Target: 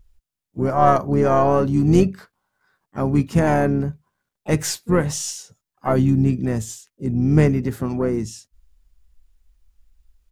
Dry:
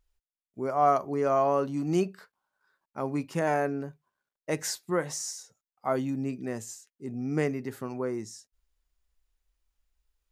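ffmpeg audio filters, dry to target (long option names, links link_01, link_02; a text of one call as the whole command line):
ffmpeg -i in.wav -filter_complex "[0:a]aeval=exprs='0.282*(cos(1*acos(clip(val(0)/0.282,-1,1)))-cos(1*PI/2))+0.00708*(cos(4*acos(clip(val(0)/0.282,-1,1)))-cos(4*PI/2))':channel_layout=same,asplit=4[link_01][link_02][link_03][link_04];[link_02]asetrate=22050,aresample=44100,atempo=2,volume=-17dB[link_05];[link_03]asetrate=33038,aresample=44100,atempo=1.33484,volume=-15dB[link_06];[link_04]asetrate=58866,aresample=44100,atempo=0.749154,volume=-15dB[link_07];[link_01][link_05][link_06][link_07]amix=inputs=4:normalize=0,bass=frequency=250:gain=12,treble=frequency=4000:gain=1,volume=6.5dB" out.wav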